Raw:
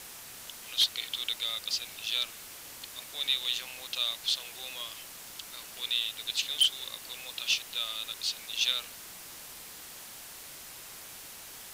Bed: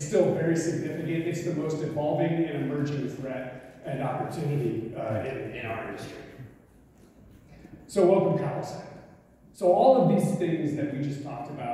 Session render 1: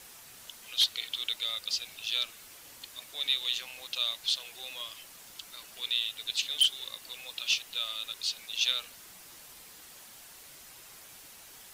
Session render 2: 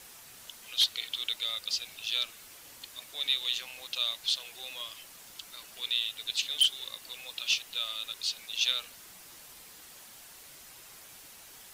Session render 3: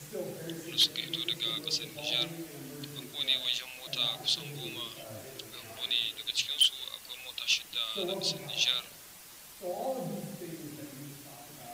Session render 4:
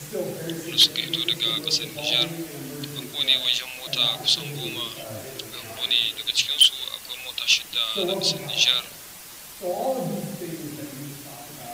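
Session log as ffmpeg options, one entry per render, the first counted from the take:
-af "afftdn=nr=6:nf=-47"
-af anull
-filter_complex "[1:a]volume=0.158[s0];[0:a][s0]amix=inputs=2:normalize=0"
-af "volume=2.82"

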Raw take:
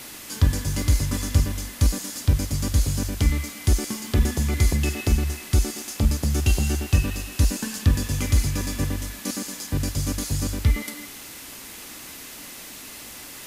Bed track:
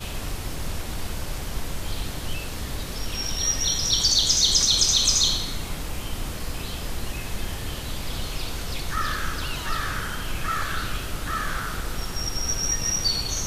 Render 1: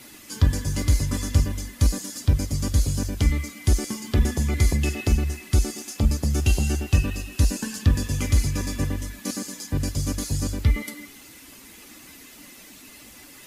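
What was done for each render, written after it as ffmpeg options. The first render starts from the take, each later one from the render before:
-af "afftdn=nr=9:nf=-40"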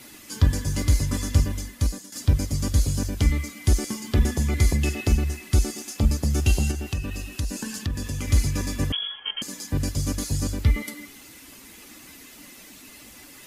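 -filter_complex "[0:a]asettb=1/sr,asplit=3[s0][s1][s2];[s0]atrim=end=6.714[s3];[s1]atrim=start=6.71:end=8.28,asetpts=PTS-STARTPTS,afade=t=in:d=0.004:c=qsin,afade=t=out:st=1.566:d=0.004:c=qsin,acompressor=threshold=0.0447:ratio=2.5:attack=3.2:release=140:knee=1:detection=peak[s4];[s2]atrim=start=8.276[s5];[s3][s4]acrossfade=d=0.004:c1=hsin:c2=qsin[s6];[s6][s5]acrossfade=d=0.004:c1=qsin:c2=hsin,asettb=1/sr,asplit=3[s7][s8][s9];[s7]atrim=end=8.924[s10];[s8]atrim=start=8.92:end=9.42,asetpts=PTS-STARTPTS,afade=t=in:d=0.004:c=qsin,afade=t=out:st=0.496:d=0.004:c=qsin,lowpass=f=2900:t=q:w=0.5098,lowpass=f=2900:t=q:w=0.6013,lowpass=f=2900:t=q:w=0.9,lowpass=f=2900:t=q:w=2.563,afreqshift=-3400[s11];[s9]atrim=start=9.416[s12];[s10][s11]acrossfade=d=0.004:c1=hsin:c2=qsin[s13];[s13][s12]acrossfade=d=0.004:c1=qsin:c2=hsin,asplit=2[s14][s15];[s14]atrim=end=2.12,asetpts=PTS-STARTPTS,afade=t=out:st=1.59:d=0.53:silence=0.251189[s16];[s15]atrim=start=2.12,asetpts=PTS-STARTPTS,afade=t=in:d=0.004:c=hsin:silence=0.251189[s17];[s16][s17]concat=n=2:v=0:a=1"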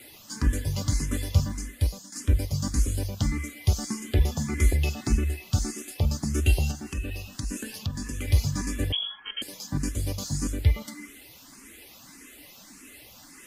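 -filter_complex "[0:a]asplit=2[s0][s1];[s1]afreqshift=1.7[s2];[s0][s2]amix=inputs=2:normalize=1"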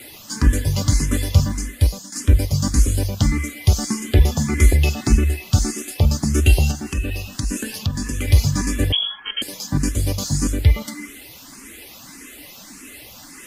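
-af "volume=2.66,alimiter=limit=0.708:level=0:latency=1"

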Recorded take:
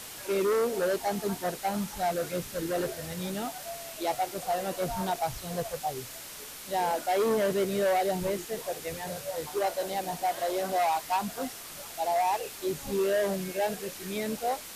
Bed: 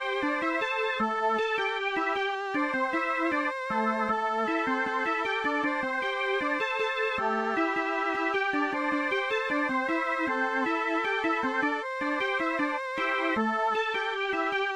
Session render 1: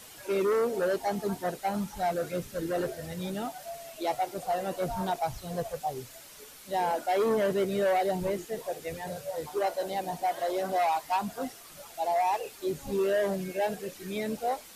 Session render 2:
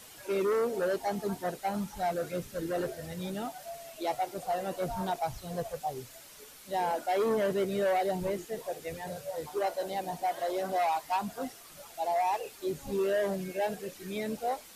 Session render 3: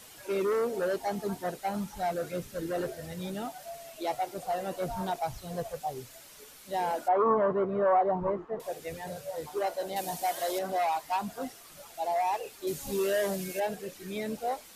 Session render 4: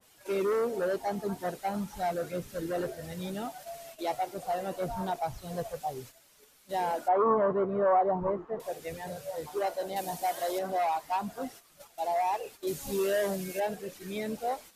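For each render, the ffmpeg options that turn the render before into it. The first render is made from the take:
-af "afftdn=nr=8:nf=-43"
-af "volume=0.794"
-filter_complex "[0:a]asettb=1/sr,asplit=3[s0][s1][s2];[s0]atrim=end=7.084[s3];[s1]atrim=start=7.08:end=8.6,asetpts=PTS-STARTPTS,afade=t=in:d=0.004:c=qsin,afade=t=out:st=1.516:d=0.004:c=qsin,lowpass=f=1100:t=q:w=5.2[s4];[s2]atrim=start=8.596[s5];[s3][s4]acrossfade=d=0.004:c1=hsin:c2=qsin[s6];[s6][s5]acrossfade=d=0.004:c1=qsin:c2=hsin,asettb=1/sr,asplit=3[s7][s8][s9];[s7]atrim=end=9.964[s10];[s8]atrim=start=9.96:end=10.59,asetpts=PTS-STARTPTS,afade=t=in:d=0.004:c=qsin,afade=t=out:st=0.626:d=0.004:c=qsin,highshelf=f=3500:g=12[s11];[s9]atrim=start=10.586[s12];[s10][s11]acrossfade=d=0.004:c1=hsin:c2=qsin[s13];[s13][s12]acrossfade=d=0.004:c1=qsin:c2=hsin,asettb=1/sr,asplit=3[s14][s15][s16];[s14]atrim=end=12.674[s17];[s15]atrim=start=12.67:end=13.6,asetpts=PTS-STARTPTS,afade=t=in:d=0.004:c=qsin,afade=t=out:st=0.926:d=0.004:c=qsin,highshelf=f=3300:g=10.5[s18];[s16]atrim=start=13.596[s19];[s17][s18]acrossfade=d=0.004:c1=hsin:c2=qsin[s20];[s20][s19]acrossfade=d=0.004:c1=qsin:c2=hsin"
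-af "agate=range=0.316:threshold=0.00447:ratio=16:detection=peak,adynamicequalizer=threshold=0.00631:dfrequency=1800:dqfactor=0.7:tfrequency=1800:tqfactor=0.7:attack=5:release=100:ratio=0.375:range=2:mode=cutabove:tftype=highshelf"

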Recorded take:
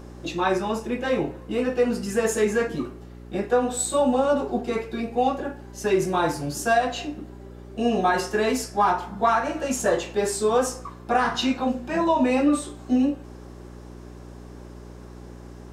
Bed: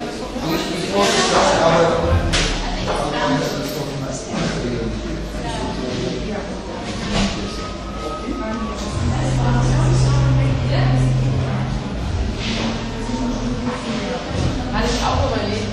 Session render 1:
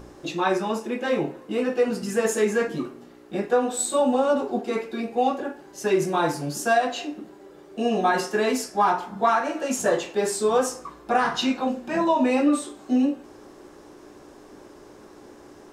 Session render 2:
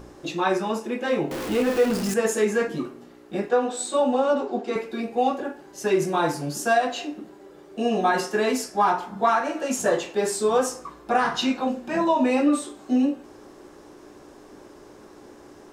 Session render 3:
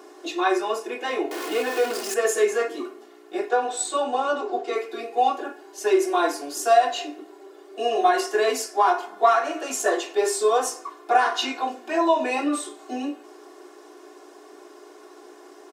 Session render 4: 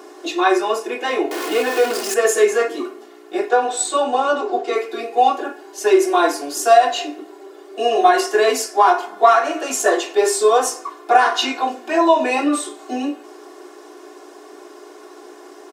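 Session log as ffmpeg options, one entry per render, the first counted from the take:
-af "bandreject=f=60:t=h:w=4,bandreject=f=120:t=h:w=4,bandreject=f=180:t=h:w=4,bandreject=f=240:t=h:w=4"
-filter_complex "[0:a]asettb=1/sr,asplit=3[s0][s1][s2];[s0]atrim=end=1.314[s3];[s1]atrim=start=1.31:end=2.14,asetpts=PTS-STARTPTS,afade=t=in:d=0.004:c=qsin,afade=t=out:st=0.826:d=0.004:c=qsin,aeval=exprs='val(0)+0.5*0.0501*sgn(val(0))':c=same[s4];[s2]atrim=start=2.136[s5];[s3][s4]acrossfade=d=0.004:c1=hsin:c2=qsin[s6];[s6][s5]acrossfade=d=0.004:c1=qsin:c2=hsin,asettb=1/sr,asplit=3[s7][s8][s9];[s7]atrim=end=3.494[s10];[s8]atrim=start=3.49:end=4.76,asetpts=PTS-STARTPTS,afade=t=in:d=0.004:c=qsin,afade=t=out:st=1.266:d=0.004:c=qsin,highpass=210,lowpass=6900[s11];[s9]atrim=start=4.756[s12];[s10][s11]acrossfade=d=0.004:c1=hsin:c2=qsin[s13];[s13][s12]acrossfade=d=0.004:c1=qsin:c2=hsin"
-af "highpass=f=360:w=0.5412,highpass=f=360:w=1.3066,aecho=1:1:2.8:0.73"
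-af "volume=2,alimiter=limit=0.891:level=0:latency=1"

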